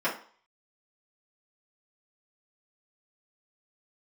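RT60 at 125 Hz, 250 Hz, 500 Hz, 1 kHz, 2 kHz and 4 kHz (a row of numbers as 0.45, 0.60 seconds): 0.30, 0.35, 0.45, 0.50, 0.40, 0.40 seconds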